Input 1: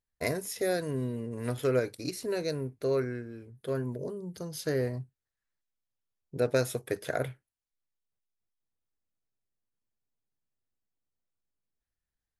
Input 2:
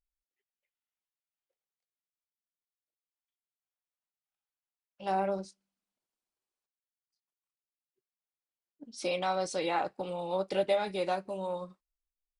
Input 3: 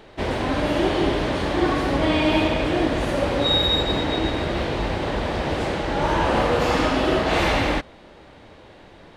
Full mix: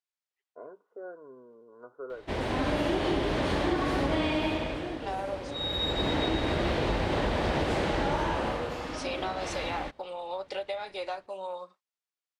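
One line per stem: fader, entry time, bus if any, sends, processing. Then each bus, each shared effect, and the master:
-5.0 dB, 0.35 s, bus A, no send, rippled Chebyshev low-pass 1.5 kHz, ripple 6 dB
+2.5 dB, 0.00 s, bus A, no send, none
-7.5 dB, 2.10 s, no bus, no send, level rider gain up to 9.5 dB; auto duck -15 dB, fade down 0.75 s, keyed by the second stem
bus A: 0.0 dB, band-pass 590–6900 Hz; compression, threshold -31 dBFS, peak gain reduction 8 dB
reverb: none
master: compression 6:1, threshold -24 dBFS, peak gain reduction 8 dB

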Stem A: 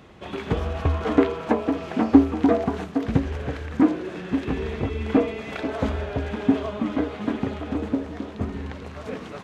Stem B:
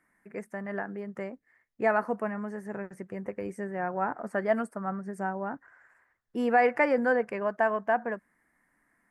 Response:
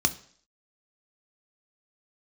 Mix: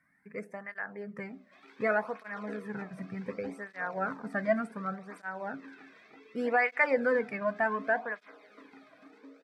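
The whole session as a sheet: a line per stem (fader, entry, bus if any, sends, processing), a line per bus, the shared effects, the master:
-11.5 dB, 1.30 s, send -11.5 dB, ladder high-pass 390 Hz, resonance 30%
+2.0 dB, 0.00 s, send -15.5 dB, treble shelf 6.5 kHz -8.5 dB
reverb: on, RT60 0.55 s, pre-delay 3 ms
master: cancelling through-zero flanger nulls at 0.67 Hz, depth 2.4 ms

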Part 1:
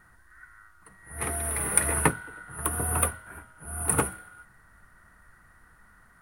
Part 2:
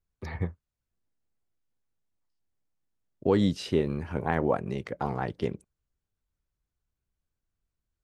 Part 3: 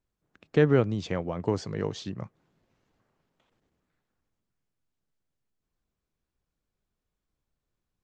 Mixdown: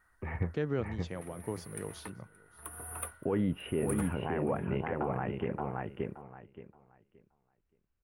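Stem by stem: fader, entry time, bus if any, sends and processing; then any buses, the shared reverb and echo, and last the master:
0.68 s -11 dB -> 1.29 s -23.5 dB -> 2.13 s -23.5 dB -> 2.81 s -14 dB, 0.00 s, no send, echo send -22.5 dB, peaking EQ 160 Hz -9.5 dB 1.5 oct
0.0 dB, 0.00 s, no send, echo send -4.5 dB, elliptic low-pass 2.8 kHz, stop band 40 dB; peak limiter -18 dBFS, peak gain reduction 8 dB
-10.5 dB, 0.00 s, no send, echo send -23.5 dB, none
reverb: none
echo: feedback delay 574 ms, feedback 22%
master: peak limiter -21.5 dBFS, peak gain reduction 5.5 dB

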